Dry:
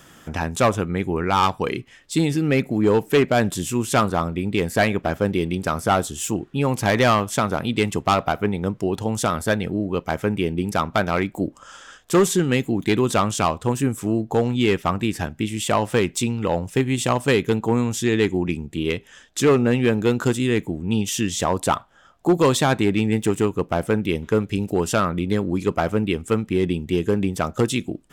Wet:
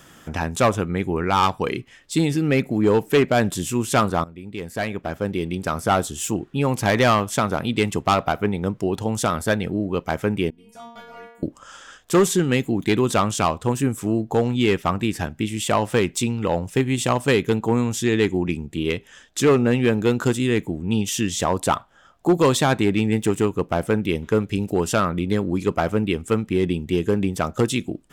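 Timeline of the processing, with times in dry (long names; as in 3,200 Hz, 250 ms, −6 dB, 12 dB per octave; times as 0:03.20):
0:04.24–0:05.99: fade in, from −16.5 dB
0:10.50–0:11.43: stiff-string resonator 230 Hz, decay 0.75 s, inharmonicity 0.002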